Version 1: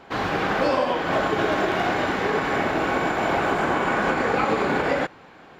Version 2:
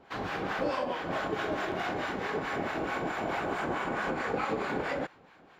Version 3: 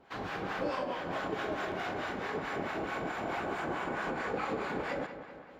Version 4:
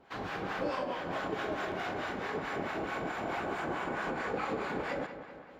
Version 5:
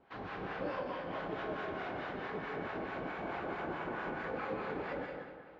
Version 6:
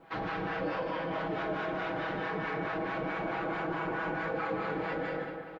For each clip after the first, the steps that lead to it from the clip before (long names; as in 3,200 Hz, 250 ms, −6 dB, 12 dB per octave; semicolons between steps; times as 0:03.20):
two-band tremolo in antiphase 4.6 Hz, depth 70%, crossover 770 Hz; level −6.5 dB
feedback echo with a low-pass in the loop 192 ms, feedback 62%, low-pass 4,100 Hz, level −11 dB; level −3.5 dB
no processing that can be heard
high-frequency loss of the air 200 metres; convolution reverb RT60 0.50 s, pre-delay 152 ms, DRR 4 dB; level −4.5 dB
comb filter 6.2 ms, depth 92%; in parallel at −2.5 dB: compressor whose output falls as the input rises −42 dBFS, ratio −1